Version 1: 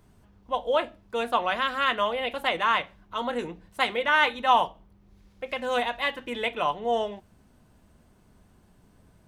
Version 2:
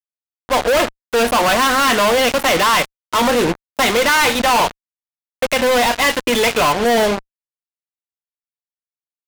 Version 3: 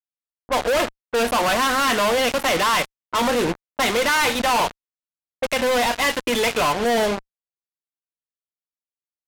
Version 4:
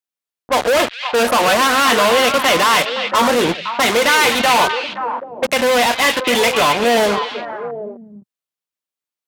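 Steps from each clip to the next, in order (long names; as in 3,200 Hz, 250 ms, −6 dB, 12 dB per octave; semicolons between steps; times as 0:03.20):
fuzz pedal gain 43 dB, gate −39 dBFS; leveller curve on the samples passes 1
low-pass that shuts in the quiet parts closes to 610 Hz, open at −16.5 dBFS; level −5 dB
high-pass filter 130 Hz 6 dB per octave; on a send: echo through a band-pass that steps 260 ms, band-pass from 3,000 Hz, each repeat −1.4 octaves, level −3 dB; on the sum: level +5.5 dB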